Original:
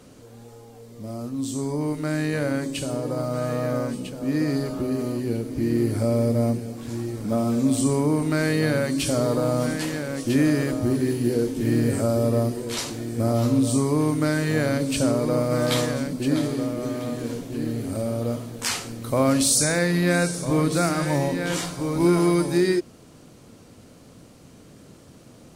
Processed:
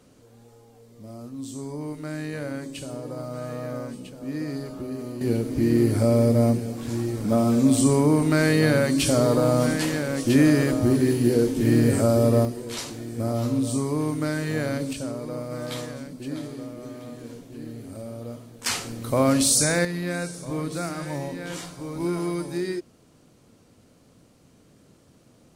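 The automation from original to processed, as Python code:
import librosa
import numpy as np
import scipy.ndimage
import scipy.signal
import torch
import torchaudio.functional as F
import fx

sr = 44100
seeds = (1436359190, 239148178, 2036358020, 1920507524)

y = fx.gain(x, sr, db=fx.steps((0.0, -7.0), (5.21, 2.5), (12.45, -4.0), (14.93, -10.0), (18.66, 0.0), (19.85, -8.0)))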